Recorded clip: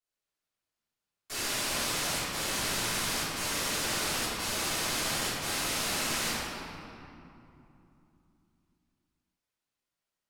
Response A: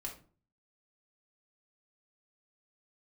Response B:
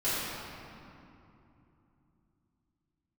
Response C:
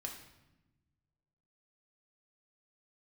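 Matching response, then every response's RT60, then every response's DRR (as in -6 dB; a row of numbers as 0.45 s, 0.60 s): B; 0.40 s, 2.9 s, 1.0 s; -1.5 dB, -15.0 dB, 0.0 dB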